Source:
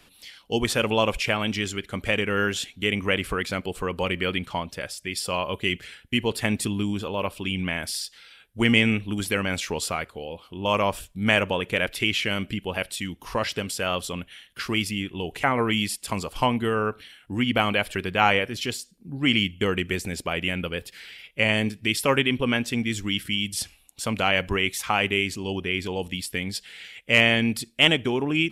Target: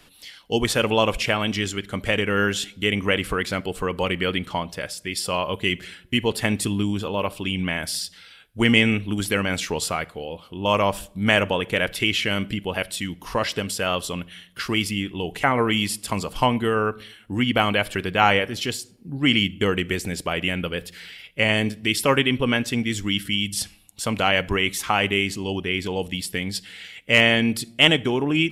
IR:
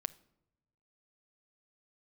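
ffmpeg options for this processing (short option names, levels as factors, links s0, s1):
-filter_complex "[0:a]bandreject=f=2400:w=20,asplit=2[s0][s1];[1:a]atrim=start_sample=2205[s2];[s1][s2]afir=irnorm=-1:irlink=0,volume=1.58[s3];[s0][s3]amix=inputs=2:normalize=0,volume=0.562"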